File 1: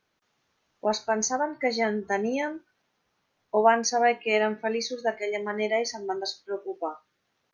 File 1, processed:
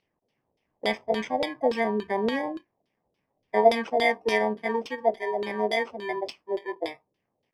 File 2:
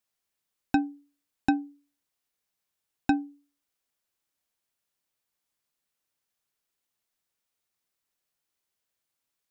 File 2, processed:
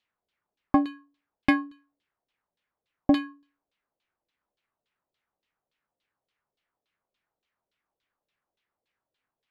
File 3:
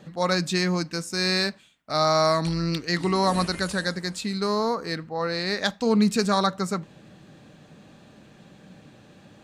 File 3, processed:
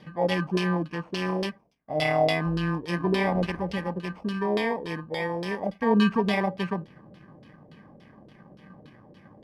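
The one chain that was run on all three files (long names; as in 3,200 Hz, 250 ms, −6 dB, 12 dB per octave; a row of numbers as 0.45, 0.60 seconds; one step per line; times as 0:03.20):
samples in bit-reversed order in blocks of 32 samples
auto-filter low-pass saw down 3.5 Hz 460–3,800 Hz
loudness normalisation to −27 LKFS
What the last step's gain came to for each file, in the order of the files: +0.5, +3.0, −1.0 decibels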